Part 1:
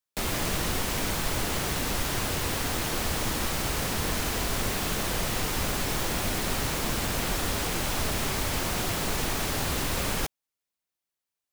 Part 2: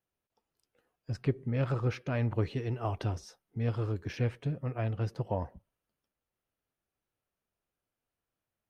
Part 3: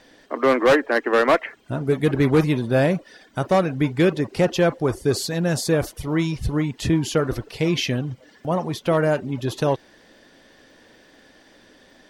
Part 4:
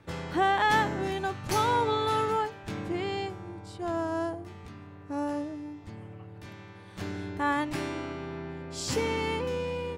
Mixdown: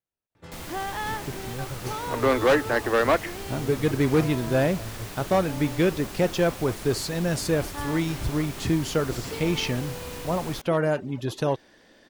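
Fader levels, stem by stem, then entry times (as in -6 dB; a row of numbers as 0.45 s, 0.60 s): -10.0 dB, -6.0 dB, -4.0 dB, -7.5 dB; 0.35 s, 0.00 s, 1.80 s, 0.35 s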